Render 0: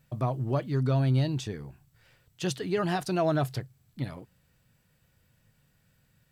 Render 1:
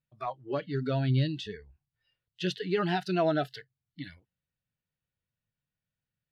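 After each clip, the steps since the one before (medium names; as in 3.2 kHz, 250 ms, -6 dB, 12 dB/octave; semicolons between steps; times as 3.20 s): spectral noise reduction 24 dB; resonant high shelf 5.5 kHz -13.5 dB, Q 1.5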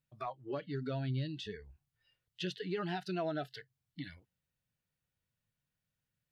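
compression 2:1, threshold -44 dBFS, peak gain reduction 12 dB; trim +1.5 dB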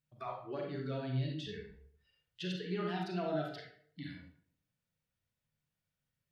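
reverberation RT60 0.60 s, pre-delay 33 ms, DRR -0.5 dB; trim -3.5 dB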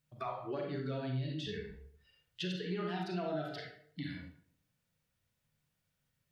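compression 2.5:1, threshold -43 dBFS, peak gain reduction 9 dB; trim +6 dB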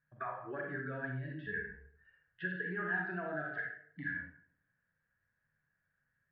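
four-pole ladder low-pass 1.7 kHz, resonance 90%; trim +8.5 dB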